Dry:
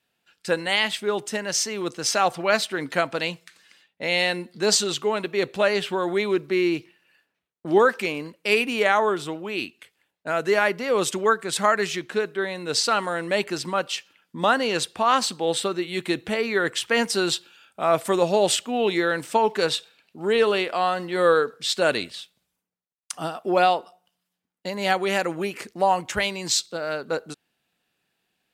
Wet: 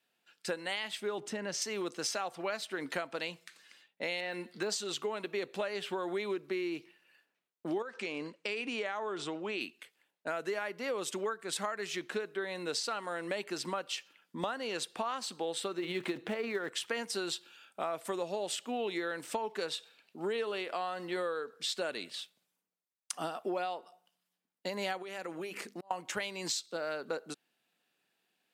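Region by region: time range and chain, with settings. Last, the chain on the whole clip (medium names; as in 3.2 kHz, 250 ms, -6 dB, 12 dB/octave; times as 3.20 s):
1.18–1.62 s: low-pass 3.8 kHz 6 dB/octave + bass shelf 260 Hz +10 dB + compression 2:1, threshold -30 dBFS
4.20–4.70 s: de-esser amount 95% + peaking EQ 1.9 kHz +5.5 dB 2.1 oct
7.82–9.61 s: low-pass 8 kHz 24 dB/octave + compression 2.5:1, threshold -27 dBFS
15.78–16.69 s: block-companded coder 5-bit + low-pass 2.1 kHz 6 dB/octave + transient shaper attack +5 dB, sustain +9 dB
25.02–25.91 s: compression 5:1, threshold -32 dBFS + hum notches 50/100/150/200/250 Hz + slow attack 620 ms
whole clip: high-pass 210 Hz 12 dB/octave; compression 10:1, threshold -28 dBFS; trim -4 dB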